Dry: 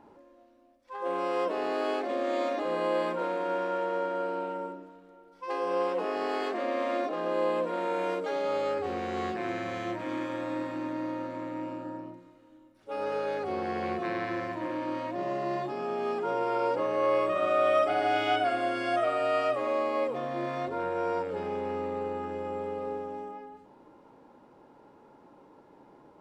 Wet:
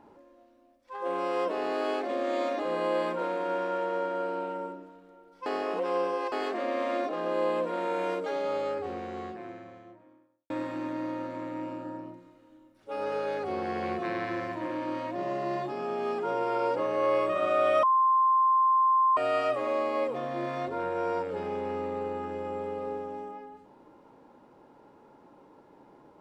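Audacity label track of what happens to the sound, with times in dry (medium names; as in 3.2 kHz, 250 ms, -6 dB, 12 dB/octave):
5.460000	6.320000	reverse
8.070000	10.500000	studio fade out
17.830000	19.170000	bleep 1.05 kHz -19.5 dBFS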